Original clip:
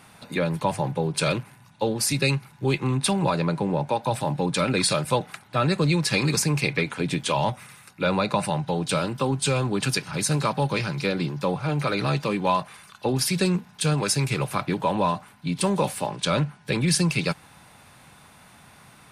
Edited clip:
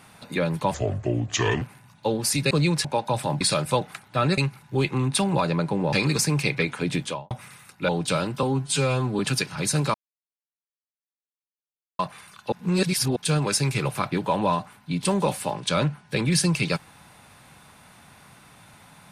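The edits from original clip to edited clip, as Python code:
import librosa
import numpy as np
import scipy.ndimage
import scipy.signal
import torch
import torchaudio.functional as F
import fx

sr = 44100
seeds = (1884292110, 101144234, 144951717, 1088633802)

y = fx.studio_fade_out(x, sr, start_s=7.17, length_s=0.32)
y = fx.edit(y, sr, fx.speed_span(start_s=0.74, length_s=0.64, speed=0.73),
    fx.swap(start_s=2.27, length_s=1.55, other_s=5.77, other_length_s=0.34),
    fx.cut(start_s=4.38, length_s=0.42),
    fx.cut(start_s=8.07, length_s=0.63),
    fx.stretch_span(start_s=9.24, length_s=0.51, factor=1.5),
    fx.silence(start_s=10.5, length_s=2.05),
    fx.reverse_span(start_s=13.08, length_s=0.64), tone=tone)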